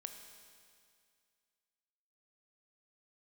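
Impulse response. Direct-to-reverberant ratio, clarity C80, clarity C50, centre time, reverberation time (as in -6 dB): 5.5 dB, 7.5 dB, 6.5 dB, 41 ms, 2.2 s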